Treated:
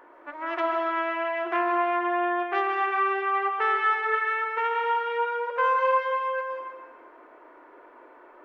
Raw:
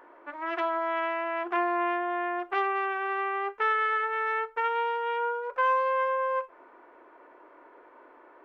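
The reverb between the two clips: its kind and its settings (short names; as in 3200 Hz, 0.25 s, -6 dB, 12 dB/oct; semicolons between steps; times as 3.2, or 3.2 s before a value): digital reverb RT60 1.4 s, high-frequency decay 1×, pre-delay 0.1 s, DRR 2.5 dB; gain +1 dB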